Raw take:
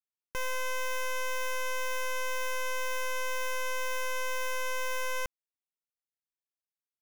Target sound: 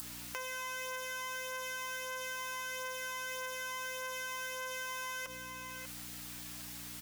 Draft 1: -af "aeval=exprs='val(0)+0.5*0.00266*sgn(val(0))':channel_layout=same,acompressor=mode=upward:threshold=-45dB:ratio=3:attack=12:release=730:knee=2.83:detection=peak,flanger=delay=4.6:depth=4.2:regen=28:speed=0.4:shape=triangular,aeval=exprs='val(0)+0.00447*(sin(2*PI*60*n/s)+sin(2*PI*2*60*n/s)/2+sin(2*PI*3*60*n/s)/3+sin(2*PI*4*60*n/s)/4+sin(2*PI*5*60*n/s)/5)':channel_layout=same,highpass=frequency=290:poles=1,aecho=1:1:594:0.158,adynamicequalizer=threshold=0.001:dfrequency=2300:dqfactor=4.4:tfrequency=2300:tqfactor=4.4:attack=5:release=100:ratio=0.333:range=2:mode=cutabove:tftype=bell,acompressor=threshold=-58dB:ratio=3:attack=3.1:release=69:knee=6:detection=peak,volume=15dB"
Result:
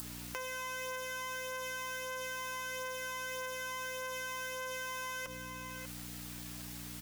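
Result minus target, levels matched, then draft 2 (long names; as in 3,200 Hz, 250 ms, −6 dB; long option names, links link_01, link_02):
250 Hz band +4.5 dB
-af "aeval=exprs='val(0)+0.5*0.00266*sgn(val(0))':channel_layout=same,acompressor=mode=upward:threshold=-45dB:ratio=3:attack=12:release=730:knee=2.83:detection=peak,flanger=delay=4.6:depth=4.2:regen=28:speed=0.4:shape=triangular,aeval=exprs='val(0)+0.00447*(sin(2*PI*60*n/s)+sin(2*PI*2*60*n/s)/2+sin(2*PI*3*60*n/s)/3+sin(2*PI*4*60*n/s)/4+sin(2*PI*5*60*n/s)/5)':channel_layout=same,highpass=frequency=710:poles=1,aecho=1:1:594:0.158,adynamicequalizer=threshold=0.001:dfrequency=2300:dqfactor=4.4:tfrequency=2300:tqfactor=4.4:attack=5:release=100:ratio=0.333:range=2:mode=cutabove:tftype=bell,acompressor=threshold=-58dB:ratio=3:attack=3.1:release=69:knee=6:detection=peak,volume=15dB"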